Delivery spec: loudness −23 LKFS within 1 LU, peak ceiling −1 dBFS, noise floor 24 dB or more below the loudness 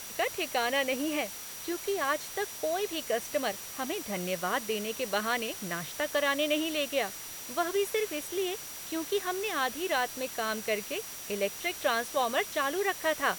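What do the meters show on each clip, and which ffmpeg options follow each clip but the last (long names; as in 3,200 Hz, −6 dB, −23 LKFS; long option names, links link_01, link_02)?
interfering tone 5,800 Hz; level of the tone −47 dBFS; background noise floor −42 dBFS; target noise floor −55 dBFS; integrated loudness −31.0 LKFS; sample peak −14.0 dBFS; target loudness −23.0 LKFS
→ -af "bandreject=frequency=5800:width=30"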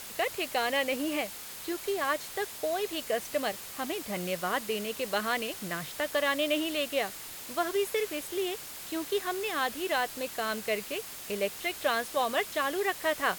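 interfering tone none found; background noise floor −43 dBFS; target noise floor −56 dBFS
→ -af "afftdn=noise_reduction=13:noise_floor=-43"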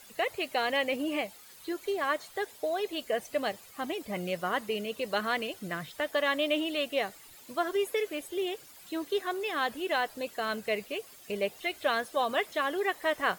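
background noise floor −53 dBFS; target noise floor −56 dBFS
→ -af "afftdn=noise_reduction=6:noise_floor=-53"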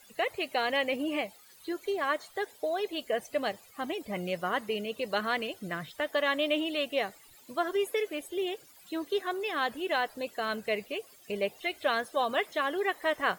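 background noise floor −57 dBFS; integrated loudness −32.0 LKFS; sample peak −14.5 dBFS; target loudness −23.0 LKFS
→ -af "volume=9dB"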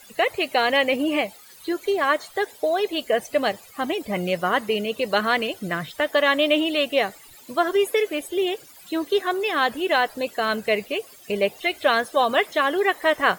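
integrated loudness −23.0 LKFS; sample peak −5.5 dBFS; background noise floor −48 dBFS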